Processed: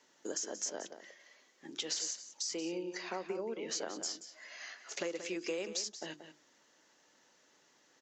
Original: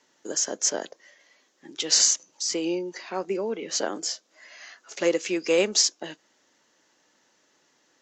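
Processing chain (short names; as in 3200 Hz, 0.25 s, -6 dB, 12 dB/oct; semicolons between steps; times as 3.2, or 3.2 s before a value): notches 50/100/150/200/250/300/350 Hz; compressor 8:1, threshold -33 dBFS, peak gain reduction 17 dB; outdoor echo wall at 31 m, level -10 dB; gain -2.5 dB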